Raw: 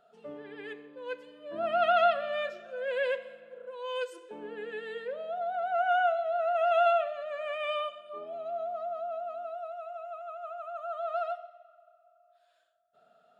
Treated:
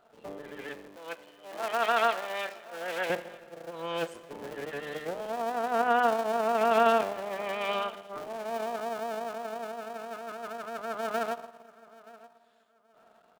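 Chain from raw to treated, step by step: cycle switcher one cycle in 3, muted; 0.96–3.10 s: high-pass 810 Hz 6 dB/octave; feedback delay 928 ms, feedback 24%, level -21 dB; trim +3 dB

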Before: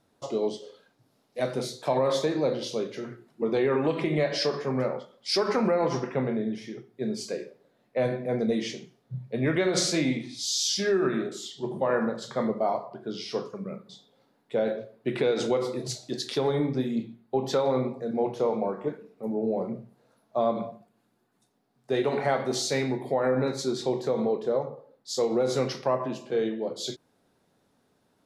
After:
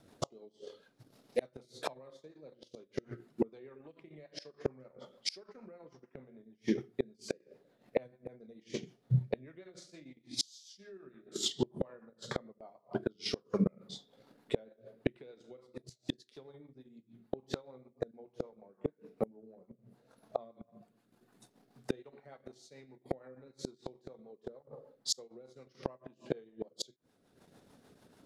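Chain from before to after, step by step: transient shaper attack +3 dB, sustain -10 dB; rotary cabinet horn 6.7 Hz; inverted gate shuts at -26 dBFS, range -35 dB; trim +8.5 dB

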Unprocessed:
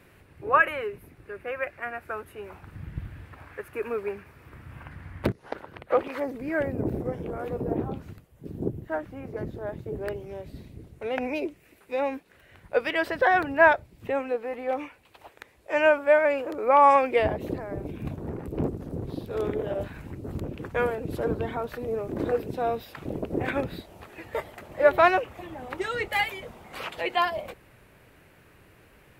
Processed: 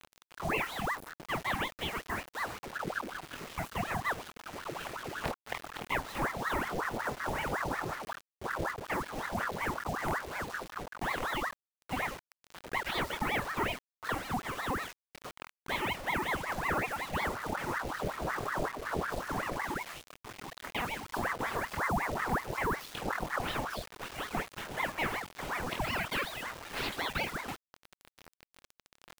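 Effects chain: 19.66–21.14 s: elliptic high-pass 590 Hz, stop band 70 dB; compression 6:1, threshold -33 dBFS, peak gain reduction 19.5 dB; on a send: flutter echo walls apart 4.2 m, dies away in 0.38 s; on the sum: reverb removal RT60 0.75 s; in parallel at -2 dB: peak limiter -28.5 dBFS, peak gain reduction 9 dB; on the sum: level-controlled noise filter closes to 1.9 kHz, open at -28.5 dBFS; bit crusher 7-bit; ring modulator with a swept carrier 920 Hz, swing 75%, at 5.4 Hz

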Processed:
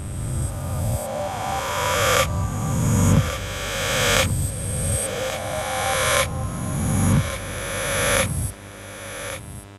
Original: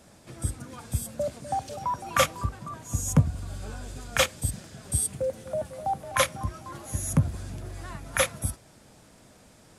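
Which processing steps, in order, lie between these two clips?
reverse spectral sustain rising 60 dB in 2.75 s; mains buzz 100 Hz, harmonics 40, -41 dBFS -5 dB/octave; delay 1133 ms -11.5 dB; trim -1 dB

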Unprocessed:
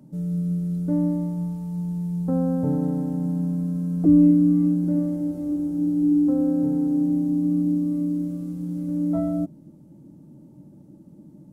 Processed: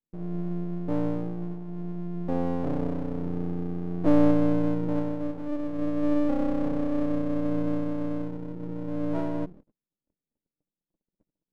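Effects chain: tracing distortion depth 0.28 ms; Chebyshev band-pass 170–700 Hz, order 2; hum notches 60/120/180/240 Hz; gate -42 dBFS, range -44 dB; half-wave rectifier

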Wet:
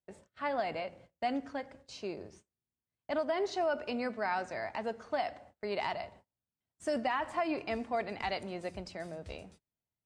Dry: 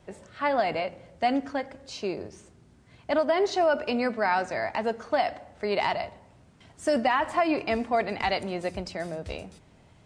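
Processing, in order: gate -47 dBFS, range -32 dB; trim -8.5 dB

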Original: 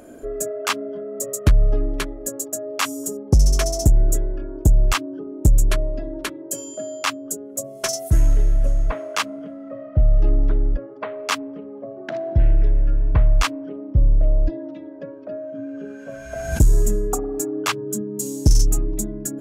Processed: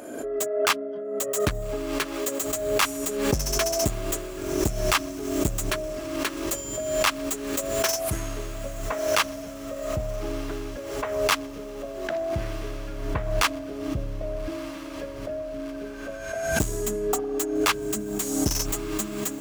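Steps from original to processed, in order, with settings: tracing distortion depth 0.072 ms; high-pass 370 Hz 6 dB/octave; echo that smears into a reverb 1293 ms, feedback 57%, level -15 dB; swell ahead of each attack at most 47 dB/s

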